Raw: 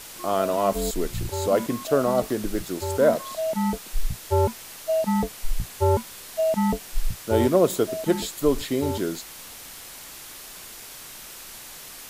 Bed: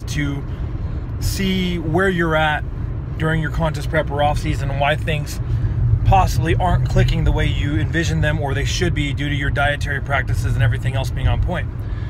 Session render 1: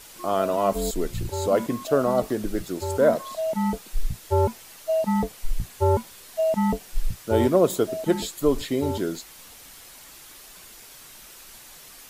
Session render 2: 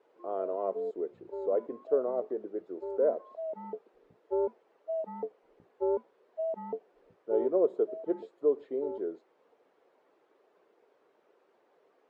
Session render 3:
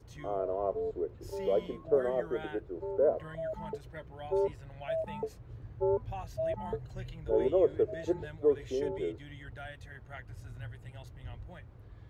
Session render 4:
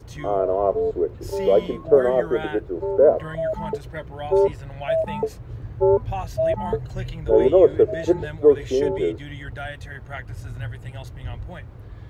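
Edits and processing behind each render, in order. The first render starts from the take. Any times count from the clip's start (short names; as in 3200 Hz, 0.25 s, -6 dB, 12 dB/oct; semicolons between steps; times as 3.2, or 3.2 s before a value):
denoiser 6 dB, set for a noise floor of -42 dBFS
vibrato 3.9 Hz 27 cents; ladder band-pass 490 Hz, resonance 55%
add bed -27 dB
gain +12 dB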